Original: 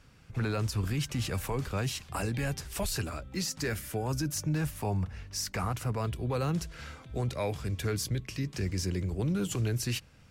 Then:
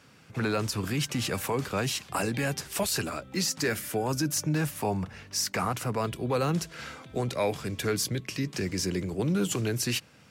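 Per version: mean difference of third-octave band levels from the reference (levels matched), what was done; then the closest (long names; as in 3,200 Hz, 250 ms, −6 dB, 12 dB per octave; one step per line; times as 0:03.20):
3.0 dB: high-pass filter 170 Hz 12 dB per octave
level +5.5 dB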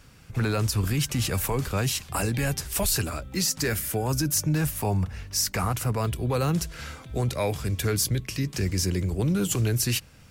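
1.5 dB: high-shelf EQ 8,400 Hz +10.5 dB
level +5.5 dB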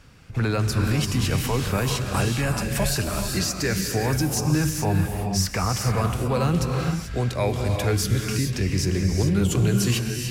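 6.0 dB: reverb whose tail is shaped and stops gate 460 ms rising, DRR 2.5 dB
level +7.5 dB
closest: second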